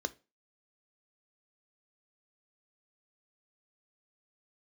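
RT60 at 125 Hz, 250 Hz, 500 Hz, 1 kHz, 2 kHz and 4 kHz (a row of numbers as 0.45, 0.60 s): 0.30, 0.30, 0.30, 0.30, 0.25, 0.25 s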